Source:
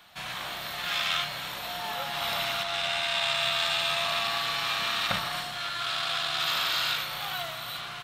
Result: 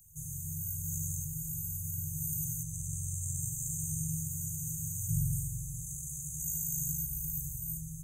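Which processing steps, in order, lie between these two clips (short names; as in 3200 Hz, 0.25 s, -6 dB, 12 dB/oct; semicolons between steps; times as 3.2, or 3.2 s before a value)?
FFT band-reject 170–6100 Hz; spring tank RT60 2.3 s, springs 44 ms, DRR -5 dB; gain +8 dB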